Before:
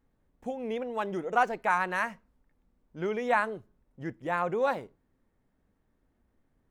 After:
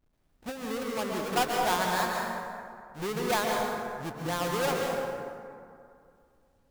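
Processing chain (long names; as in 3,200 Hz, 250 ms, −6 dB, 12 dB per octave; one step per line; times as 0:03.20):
each half-wave held at its own peak
dense smooth reverb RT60 2.4 s, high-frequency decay 0.45×, pre-delay 115 ms, DRR −0.5 dB
bit reduction 12 bits
level −6.5 dB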